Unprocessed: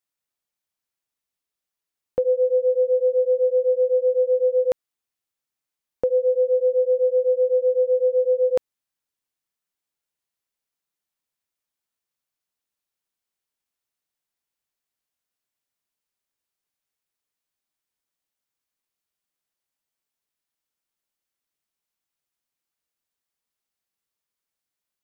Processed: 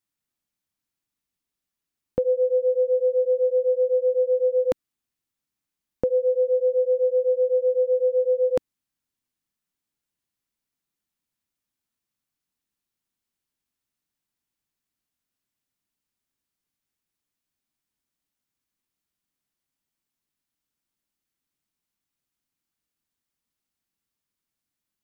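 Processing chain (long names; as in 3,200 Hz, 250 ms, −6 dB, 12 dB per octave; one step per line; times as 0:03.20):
low shelf with overshoot 360 Hz +6.5 dB, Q 1.5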